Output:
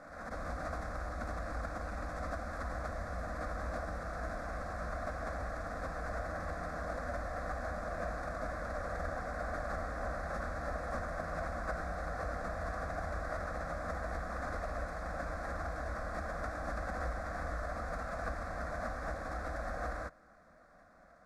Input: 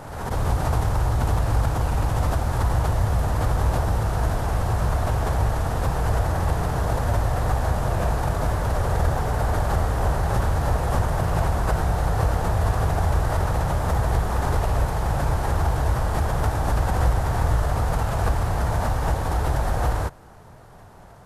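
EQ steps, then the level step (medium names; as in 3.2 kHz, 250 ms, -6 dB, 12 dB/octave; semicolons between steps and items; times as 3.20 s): low-pass 3.4 kHz 12 dB/octave; tilt EQ +2 dB/octave; static phaser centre 600 Hz, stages 8; -8.0 dB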